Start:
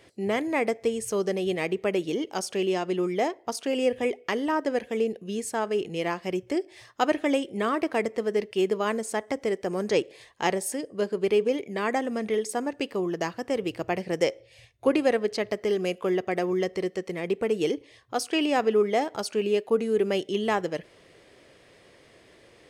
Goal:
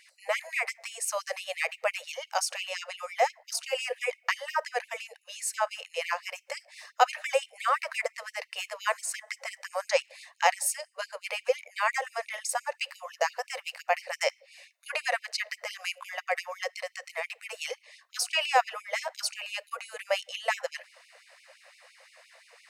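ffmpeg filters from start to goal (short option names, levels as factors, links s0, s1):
-af "bandreject=f=3300:w=5.5,afftfilt=real='re*gte(b*sr/1024,470*pow(2200/470,0.5+0.5*sin(2*PI*5.8*pts/sr)))':imag='im*gte(b*sr/1024,470*pow(2200/470,0.5+0.5*sin(2*PI*5.8*pts/sr)))':win_size=1024:overlap=0.75,volume=1.58"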